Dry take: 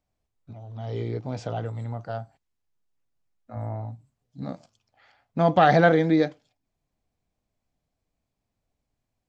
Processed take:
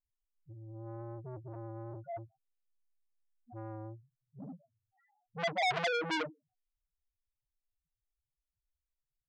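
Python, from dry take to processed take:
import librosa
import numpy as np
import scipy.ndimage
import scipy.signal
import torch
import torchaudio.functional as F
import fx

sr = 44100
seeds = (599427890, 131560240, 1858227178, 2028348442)

y = fx.spec_topn(x, sr, count=1)
y = fx.transformer_sat(y, sr, knee_hz=2500.0)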